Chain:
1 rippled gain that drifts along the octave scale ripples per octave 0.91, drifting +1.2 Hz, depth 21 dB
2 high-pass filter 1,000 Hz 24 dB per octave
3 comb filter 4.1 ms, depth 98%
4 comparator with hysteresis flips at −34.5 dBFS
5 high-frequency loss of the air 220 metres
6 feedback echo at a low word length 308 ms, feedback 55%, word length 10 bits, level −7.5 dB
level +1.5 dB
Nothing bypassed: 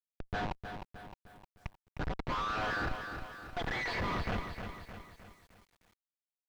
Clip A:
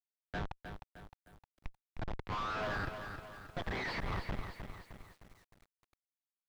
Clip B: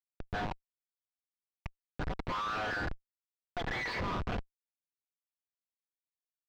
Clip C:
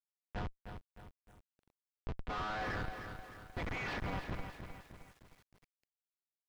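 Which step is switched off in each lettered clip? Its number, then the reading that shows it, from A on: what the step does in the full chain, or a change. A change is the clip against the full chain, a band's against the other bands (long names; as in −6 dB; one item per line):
3, 125 Hz band +2.0 dB
6, change in momentary loudness spread −1 LU
1, 125 Hz band +2.5 dB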